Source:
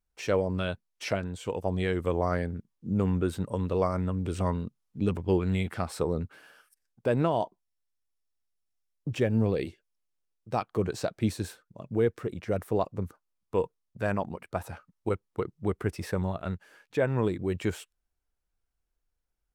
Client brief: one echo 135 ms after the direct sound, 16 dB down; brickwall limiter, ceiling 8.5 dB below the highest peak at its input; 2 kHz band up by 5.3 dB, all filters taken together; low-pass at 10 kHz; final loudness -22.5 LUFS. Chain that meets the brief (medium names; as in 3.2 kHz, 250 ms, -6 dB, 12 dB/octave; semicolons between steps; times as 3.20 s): low-pass 10 kHz; peaking EQ 2 kHz +7 dB; peak limiter -20.5 dBFS; delay 135 ms -16 dB; trim +11 dB